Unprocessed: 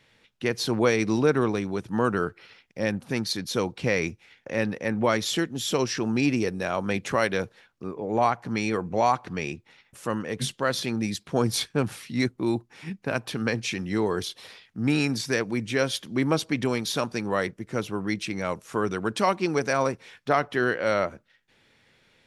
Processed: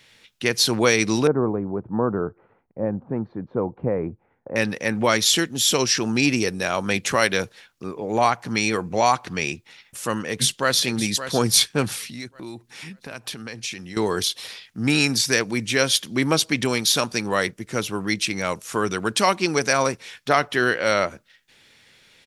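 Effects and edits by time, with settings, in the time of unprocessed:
1.27–4.56 s: low-pass 1 kHz 24 dB/octave
10.25–10.81 s: echo throw 570 ms, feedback 35%, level -11 dB
12.00–13.97 s: compression 3:1, threshold -39 dBFS
whole clip: treble shelf 2.3 kHz +11.5 dB; trim +2 dB

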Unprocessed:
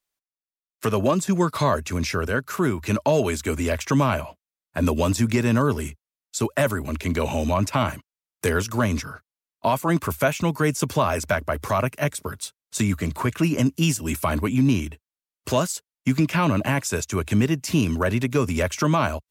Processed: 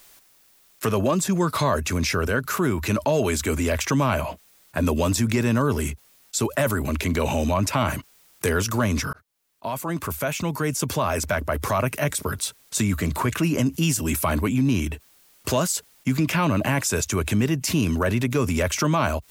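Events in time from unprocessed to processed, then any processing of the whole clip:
9.13–11.95 s: fade in
whole clip: treble shelf 12 kHz +4.5 dB; level flattener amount 50%; trim -2.5 dB

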